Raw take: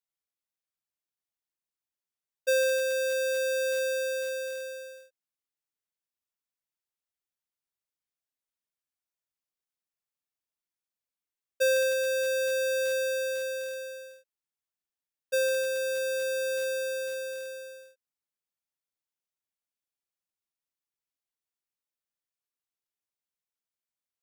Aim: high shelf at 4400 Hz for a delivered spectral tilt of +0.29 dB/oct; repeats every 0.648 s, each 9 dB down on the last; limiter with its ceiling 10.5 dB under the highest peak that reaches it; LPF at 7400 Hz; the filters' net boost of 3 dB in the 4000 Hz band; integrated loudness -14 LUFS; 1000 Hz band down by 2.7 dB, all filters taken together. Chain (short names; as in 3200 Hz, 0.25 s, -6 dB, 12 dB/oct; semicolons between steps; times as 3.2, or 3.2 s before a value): LPF 7400 Hz; bell 1000 Hz -4 dB; bell 4000 Hz +7 dB; high shelf 4400 Hz -6.5 dB; limiter -31 dBFS; feedback echo 0.648 s, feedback 35%, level -9 dB; gain +20 dB